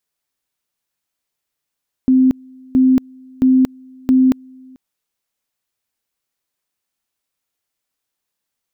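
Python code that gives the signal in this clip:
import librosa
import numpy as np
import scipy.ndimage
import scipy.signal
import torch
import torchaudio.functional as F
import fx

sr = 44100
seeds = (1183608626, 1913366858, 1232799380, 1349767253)

y = fx.two_level_tone(sr, hz=259.0, level_db=-8.0, drop_db=29.5, high_s=0.23, low_s=0.44, rounds=4)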